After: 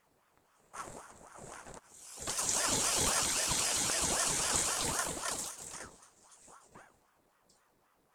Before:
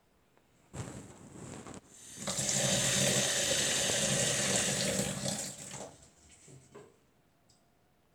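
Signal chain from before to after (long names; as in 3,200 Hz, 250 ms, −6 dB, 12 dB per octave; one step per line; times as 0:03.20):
Butterworth band-reject 2,800 Hz, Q 3.8
parametric band 11,000 Hz +5.5 dB 1.1 octaves
ring modulator whose carrier an LFO sweeps 760 Hz, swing 65%, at 3.8 Hz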